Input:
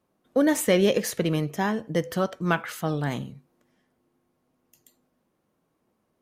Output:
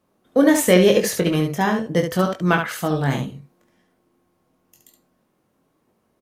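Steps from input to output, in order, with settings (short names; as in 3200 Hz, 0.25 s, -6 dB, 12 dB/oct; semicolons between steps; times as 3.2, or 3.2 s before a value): early reflections 22 ms -5.5 dB, 71 ms -6 dB; gain +4.5 dB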